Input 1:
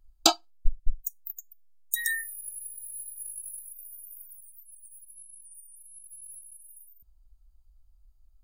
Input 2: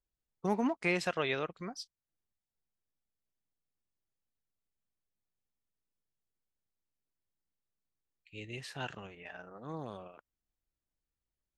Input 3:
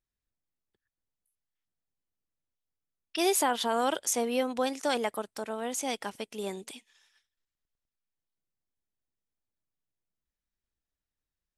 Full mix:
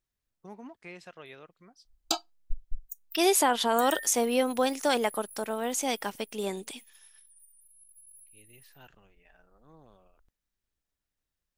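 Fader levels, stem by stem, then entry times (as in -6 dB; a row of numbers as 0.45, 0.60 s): -8.5, -14.5, +3.0 dB; 1.85, 0.00, 0.00 s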